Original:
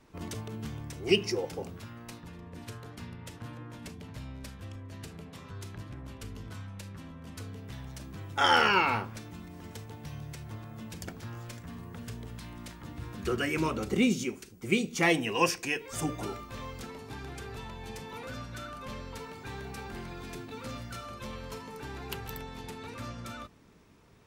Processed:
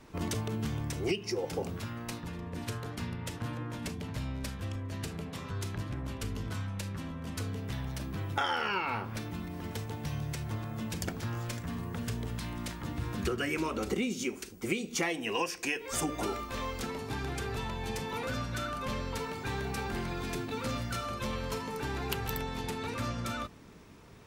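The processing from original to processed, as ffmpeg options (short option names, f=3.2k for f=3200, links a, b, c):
-filter_complex "[0:a]asettb=1/sr,asplit=3[a][b][c];[a]atrim=end=7.734[d];[b]atrim=start=7.73:end=9.77,asetpts=PTS-STARTPTS,afade=t=in:d=0.004:c=qsin,afade=t=out:st=2.036:d=0.004:c=qsin,equalizer=f=7.2k:t=o:w=0.91:g=-5[e];[c]atrim=start=9.766[f];[d][e]acrossfade=d=0.004:c1=hsin:c2=qsin[g];[g][f]acrossfade=d=0.004:c1=qsin:c2=hsin,asettb=1/sr,asplit=3[h][i][j];[h]atrim=end=13.554[k];[i]atrim=start=13.55:end=16.83,asetpts=PTS-STARTPTS,afade=t=in:d=0.004:c=qsin,afade=t=out:st=3.276:d=0.004:c=qsin,equalizer=f=130:t=o:w=0.83:g=-10[l];[j]atrim=start=16.826[m];[k][l]acrossfade=d=0.004:c1=hsin:c2=qsin[n];[n][m]acrossfade=d=0.004:c1=qsin:c2=hsin,acompressor=threshold=-34dB:ratio=16,volume=6dB"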